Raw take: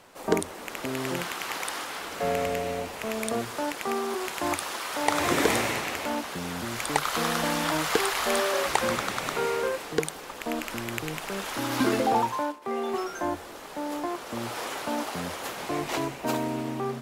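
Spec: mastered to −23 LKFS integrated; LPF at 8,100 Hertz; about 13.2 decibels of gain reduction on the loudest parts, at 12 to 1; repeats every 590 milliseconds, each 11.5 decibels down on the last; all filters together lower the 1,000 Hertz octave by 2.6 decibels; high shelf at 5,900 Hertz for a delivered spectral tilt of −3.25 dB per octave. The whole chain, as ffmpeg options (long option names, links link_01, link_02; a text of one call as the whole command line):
ffmpeg -i in.wav -af "lowpass=8100,equalizer=frequency=1000:width_type=o:gain=-3.5,highshelf=frequency=5900:gain=3.5,acompressor=threshold=-33dB:ratio=12,aecho=1:1:590|1180|1770:0.266|0.0718|0.0194,volume=14dB" out.wav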